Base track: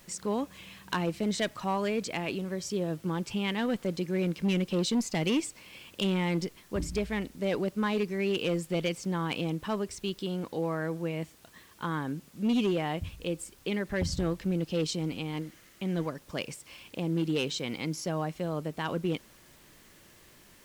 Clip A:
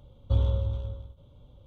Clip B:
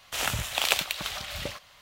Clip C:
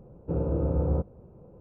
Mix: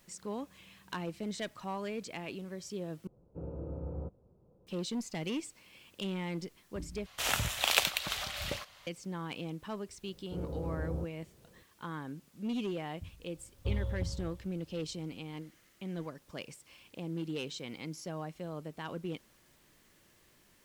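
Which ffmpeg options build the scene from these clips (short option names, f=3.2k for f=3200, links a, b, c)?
-filter_complex "[3:a]asplit=2[a][b];[0:a]volume=-8.5dB,asplit=3[c][d][e];[c]atrim=end=3.074[f];[a]atrim=end=1.6,asetpts=PTS-STARTPTS,volume=-14dB[g];[d]atrim=start=4.666:end=7.064[h];[2:a]atrim=end=1.81,asetpts=PTS-STARTPTS,volume=-2.5dB[i];[e]atrim=start=8.866[j];[b]atrim=end=1.6,asetpts=PTS-STARTPTS,volume=-11.5dB,afade=t=in:d=0.004:c=hsin,afade=t=out:st=1.596:d=0.004:c=hsin,adelay=10030[k];[1:a]atrim=end=1.66,asetpts=PTS-STARTPTS,volume=-9.5dB,afade=t=in:d=0.004:c=hsin,afade=t=out:st=1.656:d=0.004:c=hsin,adelay=13350[l];[f][g]acrossfade=d=0.004:c1=hsin:c2=hsin[m];[m][h]acrossfade=d=0.004:c1=hsin:c2=hsin[n];[n][i]acrossfade=d=0.004:c1=hsin:c2=hsin[o];[o][j]acrossfade=d=0.004:c1=hsin:c2=hsin[p];[p][k][l]amix=inputs=3:normalize=0"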